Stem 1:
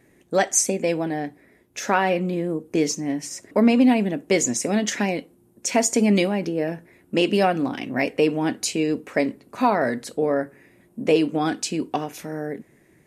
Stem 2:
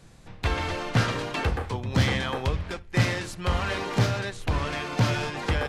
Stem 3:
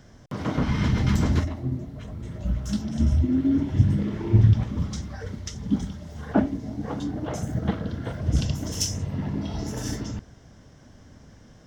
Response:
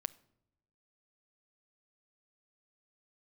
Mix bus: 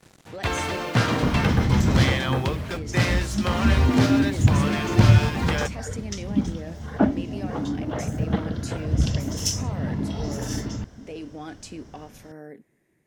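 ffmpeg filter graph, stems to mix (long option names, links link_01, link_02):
-filter_complex "[0:a]alimiter=limit=-16.5dB:level=0:latency=1,volume=-12dB[link_01];[1:a]highpass=94,acrusher=bits=7:mix=0:aa=0.5,volume=2.5dB[link_02];[2:a]adelay=650,volume=1.5dB[link_03];[link_01][link_02][link_03]amix=inputs=3:normalize=0"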